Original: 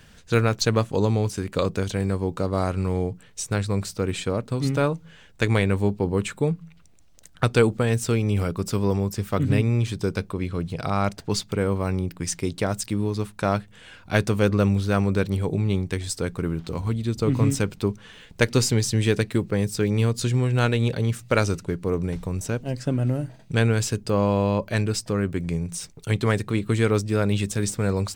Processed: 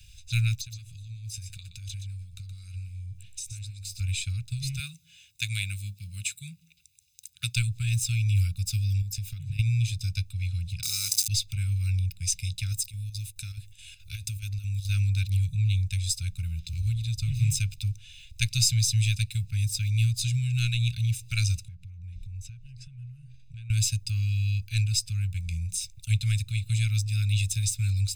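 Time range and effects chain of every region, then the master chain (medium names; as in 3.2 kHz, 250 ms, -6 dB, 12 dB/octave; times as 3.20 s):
0.57–4.00 s: compression 10:1, threshold -33 dBFS + delay 122 ms -9 dB
4.79–7.56 s: high-pass 180 Hz + treble shelf 9.3 kHz +8 dB
9.01–9.59 s: peaking EQ 310 Hz +13 dB 1.2 oct + compression 16:1, threshold -22 dBFS
10.83–11.28 s: jump at every zero crossing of -30.5 dBFS + high-pass 280 Hz + resonant high shelf 4.1 kHz +13.5 dB, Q 1.5
12.72–14.89 s: treble shelf 6.5 kHz +9.5 dB + compression 2:1, threshold -31 dBFS + square tremolo 4.7 Hz, depth 65%, duty 75%
21.68–23.70 s: low-pass 1.8 kHz 6 dB/octave + compression, threshold -35 dBFS
whole clip: inverse Chebyshev band-stop 320–860 Hz, stop band 70 dB; peaking EQ 520 Hz -8 dB 2.3 oct; comb 0.8 ms, depth 71%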